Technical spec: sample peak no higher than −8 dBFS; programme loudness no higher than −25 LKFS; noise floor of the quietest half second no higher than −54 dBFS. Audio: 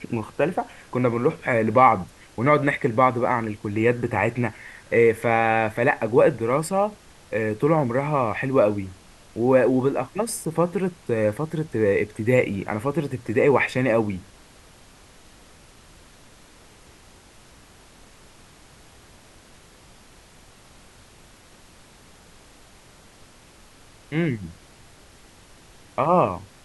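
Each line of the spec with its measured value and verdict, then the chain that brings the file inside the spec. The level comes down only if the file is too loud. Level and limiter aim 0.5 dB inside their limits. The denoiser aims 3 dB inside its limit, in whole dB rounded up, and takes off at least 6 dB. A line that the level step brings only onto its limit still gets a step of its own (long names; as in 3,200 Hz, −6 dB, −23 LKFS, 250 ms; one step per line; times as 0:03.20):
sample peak −3.0 dBFS: out of spec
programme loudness −22.5 LKFS: out of spec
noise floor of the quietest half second −50 dBFS: out of spec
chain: broadband denoise 6 dB, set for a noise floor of −50 dBFS
level −3 dB
brickwall limiter −8.5 dBFS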